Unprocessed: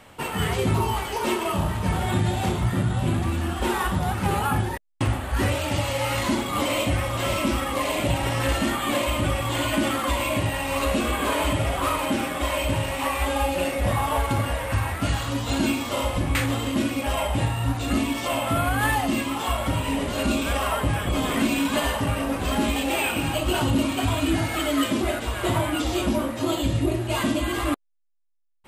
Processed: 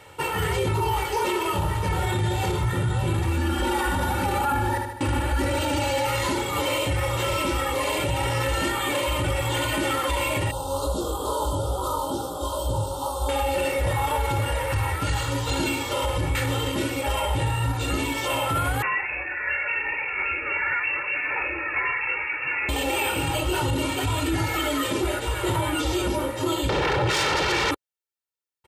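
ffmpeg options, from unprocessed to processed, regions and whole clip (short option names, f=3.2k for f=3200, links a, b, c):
-filter_complex "[0:a]asettb=1/sr,asplit=3[a][b][c];[a]atrim=end=3.374[d];[b]atrim=start=3.37:end=6.07,asetpts=PTS-STARTPTS,afade=t=in:d=0.004:c=qsin,afade=t=out:st=2.696:d=0.004:c=qsin,equalizer=f=250:t=o:w=0.4:g=9.5,aecho=1:1:3.5:0.76,atrim=end_sample=119070,aecho=1:1:76|152|228|304|380|456|532:0.447|0.25|0.14|0.0784|0.0439|0.0246|0.0138,atrim=end_sample=119070[e];[c]atrim=start=6.066[f];[d][e]acrossfade=d=0.004:c1=hsin:c2=qsin[g];[g][f]acrossfade=d=0.004:c1=qsin:c2=hsin,asettb=1/sr,asplit=3[h][i][j];[h]atrim=end=10.514[k];[i]atrim=start=10.51:end=13.29,asetpts=PTS-STARTPTS,afade=t=in:d=0.004:c=qsin,afade=t=out:st=2.776:d=0.004:c=qsin,flanger=delay=15.5:depth=6.5:speed=2.3,asuperstop=centerf=2100:order=8:qfactor=0.98[l];[j]atrim=start=13.286[m];[k][l]acrossfade=d=0.004:c1=hsin:c2=qsin[n];[n][m]acrossfade=d=0.004:c1=qsin:c2=hsin,asettb=1/sr,asplit=3[o][p][q];[o]atrim=end=18.824[r];[p]atrim=start=18.82:end=22.69,asetpts=PTS-STARTPTS,afade=t=in:d=0.004:c=qsin,afade=t=out:st=3.866:d=0.004:c=qsin,lowshelf=f=310:g=-9.5,aeval=exprs='(mod(6.31*val(0)+1,2)-1)/6.31':c=same,lowpass=f=2.4k:t=q:w=0.5098,lowpass=f=2.4k:t=q:w=0.6013,lowpass=f=2.4k:t=q:w=0.9,lowpass=f=2.4k:t=q:w=2.563,afreqshift=-2800[s];[q]atrim=start=22.686[t];[r][s]acrossfade=d=0.004:c1=hsin:c2=qsin[u];[u][t]acrossfade=d=0.004:c1=qsin:c2=hsin,asettb=1/sr,asplit=3[v][w][x];[v]atrim=end=26.694[y];[w]atrim=start=26.69:end=27.71,asetpts=PTS-STARTPTS,afade=t=in:d=0.004:c=qsin,afade=t=out:st=1.016:d=0.004:c=qsin,lowpass=3.5k,bandreject=f=50:t=h:w=6,bandreject=f=100:t=h:w=6,bandreject=f=150:t=h:w=6,bandreject=f=200:t=h:w=6,bandreject=f=250:t=h:w=6,aeval=exprs='0.224*sin(PI/2*6.31*val(0)/0.224)':c=same[z];[x]atrim=start=27.706[aa];[y][z]acrossfade=d=0.004:c1=hsin:c2=qsin[ab];[ab][aa]acrossfade=d=0.004:c1=qsin:c2=hsin,highpass=55,aecho=1:1:2.2:0.75,alimiter=limit=-16dB:level=0:latency=1:release=18"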